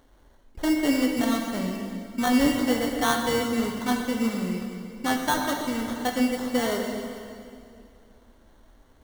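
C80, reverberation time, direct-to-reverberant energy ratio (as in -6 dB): 4.0 dB, 2.5 s, 1.5 dB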